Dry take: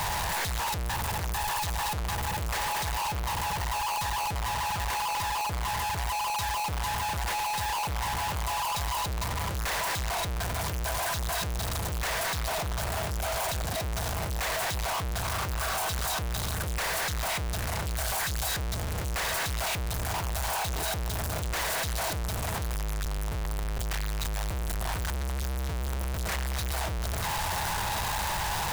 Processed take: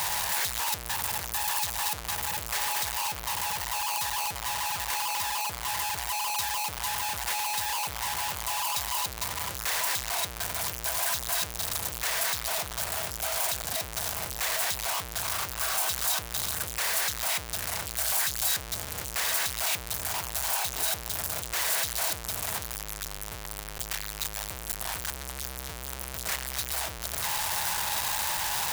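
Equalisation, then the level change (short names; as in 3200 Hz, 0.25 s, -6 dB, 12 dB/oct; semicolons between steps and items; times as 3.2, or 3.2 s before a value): tilt +2.5 dB/oct; -2.5 dB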